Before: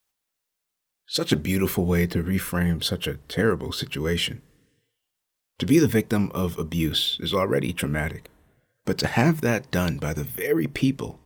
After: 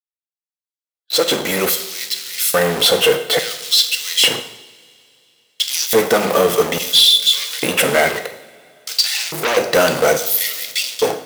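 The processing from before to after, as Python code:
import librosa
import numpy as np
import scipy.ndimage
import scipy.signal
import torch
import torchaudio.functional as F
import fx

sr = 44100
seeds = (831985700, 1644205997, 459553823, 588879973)

p1 = fx.fade_in_head(x, sr, length_s=3.25)
p2 = fx.hum_notches(p1, sr, base_hz=50, count=8)
p3 = p2 + 0.47 * np.pad(p2, (int(1.5 * sr / 1000.0), 0))[:len(p2)]
p4 = fx.leveller(p3, sr, passes=5)
p5 = (np.mod(10.0 ** (14.0 / 20.0) * p4 + 1.0, 2.0) - 1.0) / 10.0 ** (14.0 / 20.0)
p6 = p4 + F.gain(torch.from_numpy(p5), -8.5).numpy()
p7 = fx.filter_lfo_highpass(p6, sr, shape='square', hz=0.59, low_hz=420.0, high_hz=4100.0, q=1.5)
p8 = np.clip(p7, -10.0 ** (-6.5 / 20.0), 10.0 ** (-6.5 / 20.0))
p9 = fx.rev_double_slope(p8, sr, seeds[0], early_s=0.74, late_s=3.1, knee_db=-20, drr_db=7.5)
y = fx.transformer_sat(p9, sr, knee_hz=3100.0, at=(8.09, 9.57))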